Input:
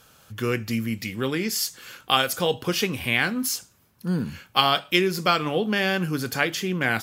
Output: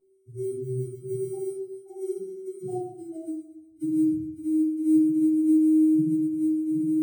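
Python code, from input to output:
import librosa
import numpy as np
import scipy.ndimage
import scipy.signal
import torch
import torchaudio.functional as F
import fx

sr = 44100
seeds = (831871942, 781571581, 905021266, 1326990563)

y = np.r_[np.sort(x[:len(x) // 128 * 128].reshape(-1, 128), axis=1).ravel(), x[len(x) // 128 * 128:]]
y = fx.doppler_pass(y, sr, speed_mps=35, closest_m=9.9, pass_at_s=2.9)
y = fx.dynamic_eq(y, sr, hz=110.0, q=1.4, threshold_db=-46.0, ratio=4.0, max_db=-3)
y = fx.transient(y, sr, attack_db=2, sustain_db=-7)
y = fx.over_compress(y, sr, threshold_db=-38.0, ratio=-0.5)
y = fx.spec_topn(y, sr, count=2)
y = fx.sample_hold(y, sr, seeds[0], rate_hz=9000.0, jitter_pct=0)
y = fx.echo_thinned(y, sr, ms=119, feedback_pct=50, hz=280.0, wet_db=-13.0)
y = fx.room_shoebox(y, sr, seeds[1], volume_m3=870.0, walls='furnished', distance_m=7.4)
y = y * librosa.db_to_amplitude(4.5)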